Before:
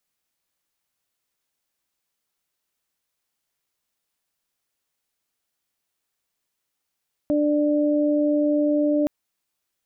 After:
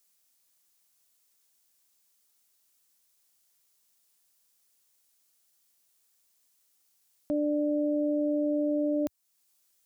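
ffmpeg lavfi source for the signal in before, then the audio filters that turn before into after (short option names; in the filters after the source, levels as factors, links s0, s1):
-f lavfi -i "aevalsrc='0.112*sin(2*PI*296*t)+0.0794*sin(2*PI*592*t)':d=1.77:s=44100"
-af "bass=f=250:g=0,treble=f=4000:g=11,alimiter=limit=0.075:level=0:latency=1:release=428,equalizer=f=85:t=o:w=0.58:g=-10"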